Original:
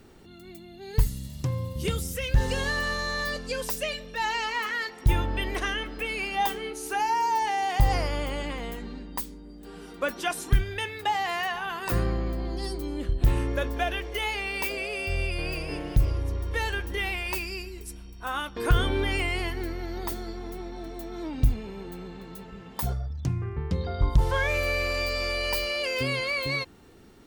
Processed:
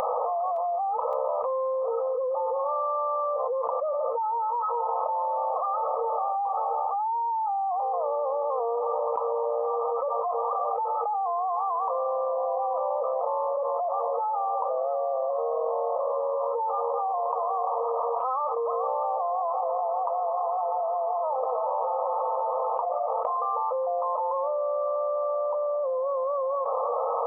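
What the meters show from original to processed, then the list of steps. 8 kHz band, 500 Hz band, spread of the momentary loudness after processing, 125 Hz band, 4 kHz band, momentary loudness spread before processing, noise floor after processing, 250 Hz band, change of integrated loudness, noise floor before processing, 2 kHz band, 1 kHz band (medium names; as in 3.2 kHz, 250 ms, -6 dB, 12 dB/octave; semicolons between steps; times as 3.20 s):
under -30 dB, +8.0 dB, 0 LU, under -40 dB, under -35 dB, 13 LU, -28 dBFS, under -30 dB, +1.0 dB, -46 dBFS, under -35 dB, +7.0 dB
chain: FFT band-pass 460–1300 Hz; upward compressor, threshold -48 dBFS; peak limiter -30 dBFS, peak gain reduction 11.5 dB; thinning echo 565 ms, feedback 59%, high-pass 950 Hz, level -22 dB; level flattener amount 100%; trim +6 dB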